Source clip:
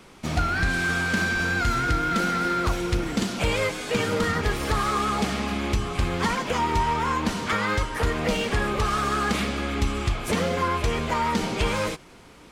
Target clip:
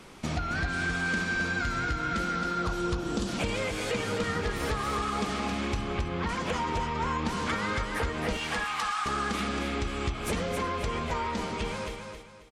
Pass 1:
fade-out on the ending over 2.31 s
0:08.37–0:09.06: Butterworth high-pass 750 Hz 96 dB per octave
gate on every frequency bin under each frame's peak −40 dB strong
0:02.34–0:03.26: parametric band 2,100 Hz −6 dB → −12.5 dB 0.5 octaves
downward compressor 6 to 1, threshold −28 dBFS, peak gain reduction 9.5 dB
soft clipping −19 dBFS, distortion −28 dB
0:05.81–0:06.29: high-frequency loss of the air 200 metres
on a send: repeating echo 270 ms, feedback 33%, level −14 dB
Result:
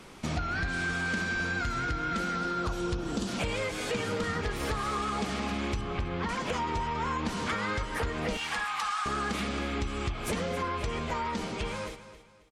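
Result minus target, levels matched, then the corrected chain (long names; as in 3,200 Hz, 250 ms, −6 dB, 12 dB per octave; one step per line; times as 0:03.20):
soft clipping: distortion +23 dB; echo-to-direct −8 dB
fade-out on the ending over 2.31 s
0:08.37–0:09.06: Butterworth high-pass 750 Hz 96 dB per octave
gate on every frequency bin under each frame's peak −40 dB strong
0:02.34–0:03.26: parametric band 2,100 Hz −6 dB → −12.5 dB 0.5 octaves
downward compressor 6 to 1, threshold −28 dBFS, peak gain reduction 9.5 dB
soft clipping −7 dBFS, distortion −51 dB
0:05.81–0:06.29: high-frequency loss of the air 200 metres
on a send: repeating echo 270 ms, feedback 33%, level −6 dB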